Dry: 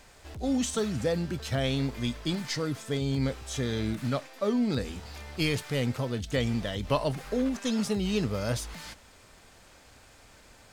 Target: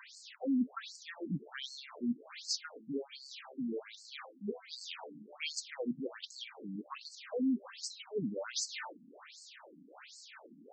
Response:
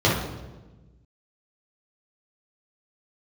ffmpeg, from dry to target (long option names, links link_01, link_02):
-af "areverse,acompressor=threshold=-38dB:ratio=5,areverse,afftfilt=real='re*between(b*sr/1024,220*pow(6000/220,0.5+0.5*sin(2*PI*1.3*pts/sr))/1.41,220*pow(6000/220,0.5+0.5*sin(2*PI*1.3*pts/sr))*1.41)':imag='im*between(b*sr/1024,220*pow(6000/220,0.5+0.5*sin(2*PI*1.3*pts/sr))/1.41,220*pow(6000/220,0.5+0.5*sin(2*PI*1.3*pts/sr))*1.41)':win_size=1024:overlap=0.75,volume=9dB"